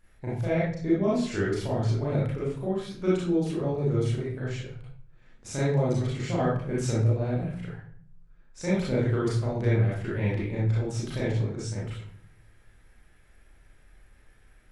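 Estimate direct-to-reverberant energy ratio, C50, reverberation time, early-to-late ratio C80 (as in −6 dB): −8.0 dB, −0.5 dB, 0.55 s, 6.0 dB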